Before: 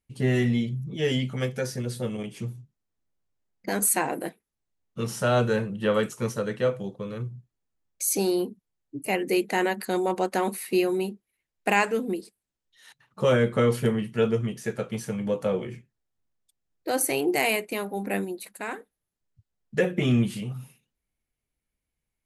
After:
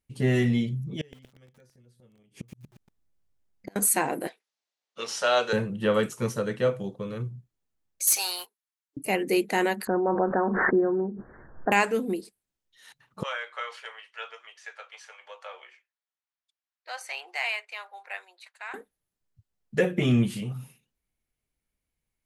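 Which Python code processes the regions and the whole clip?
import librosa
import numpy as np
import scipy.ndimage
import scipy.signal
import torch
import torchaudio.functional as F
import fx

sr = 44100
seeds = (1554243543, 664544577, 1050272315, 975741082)

y = fx.chain(x, sr, fx.low_shelf(hz=120.0, db=7.5),
    fx.gate_flip(shuts_db=-25.0, range_db=-31),
    fx.echo_crushed(ms=118, feedback_pct=55, bits=9, wet_db=-5), at=(1.01, 3.76))
y = fx.chain(y, sr, fx.cheby1_bandpass(low_hz=580.0, high_hz=5000.0, order=2),
    fx.high_shelf(hz=2100.0, db=9.5), at=(4.27, 5.53))
y = fx.chain(y, sr, fx.highpass(hz=950.0, slope=24),
    fx.leveller(passes=2), at=(8.07, 8.97))
y = fx.chain(y, sr, fx.steep_lowpass(hz=1700.0, slope=96),
    fx.pre_swell(db_per_s=27.0), at=(9.87, 11.72))
y = fx.chain(y, sr, fx.bessel_highpass(hz=1200.0, order=6),
    fx.air_absorb(metres=140.0), at=(13.23, 18.74))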